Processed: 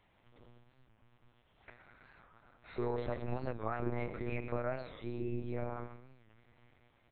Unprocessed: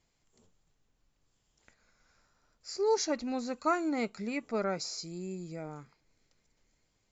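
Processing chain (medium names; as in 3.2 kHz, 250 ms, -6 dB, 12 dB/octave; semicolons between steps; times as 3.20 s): low-pass 1.9 kHz 6 dB/octave; bass shelf 260 Hz -9.5 dB; hum notches 50/100/150/200/250/300/350/400/450 Hz; peak limiter -29 dBFS, peak gain reduction 9.5 dB; compression 5:1, threshold -47 dBFS, peak gain reduction 13 dB; delay 117 ms -12 dB; simulated room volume 290 m³, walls mixed, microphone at 0.36 m; monotone LPC vocoder at 8 kHz 120 Hz; warped record 45 rpm, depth 160 cents; trim +11.5 dB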